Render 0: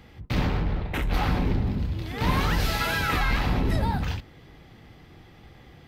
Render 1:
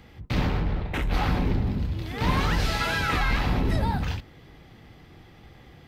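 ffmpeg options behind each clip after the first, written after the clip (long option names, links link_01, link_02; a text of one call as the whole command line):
ffmpeg -i in.wav -filter_complex "[0:a]acrossover=split=9800[link_01][link_02];[link_02]acompressor=threshold=-56dB:ratio=4:attack=1:release=60[link_03];[link_01][link_03]amix=inputs=2:normalize=0" out.wav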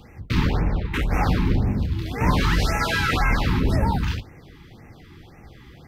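ffmpeg -i in.wav -af "flanger=delay=8.3:depth=8:regen=-71:speed=0.62:shape=sinusoidal,afftfilt=real='re*(1-between(b*sr/1024,550*pow(4000/550,0.5+0.5*sin(2*PI*1.9*pts/sr))/1.41,550*pow(4000/550,0.5+0.5*sin(2*PI*1.9*pts/sr))*1.41))':imag='im*(1-between(b*sr/1024,550*pow(4000/550,0.5+0.5*sin(2*PI*1.9*pts/sr))/1.41,550*pow(4000/550,0.5+0.5*sin(2*PI*1.9*pts/sr))*1.41))':win_size=1024:overlap=0.75,volume=8.5dB" out.wav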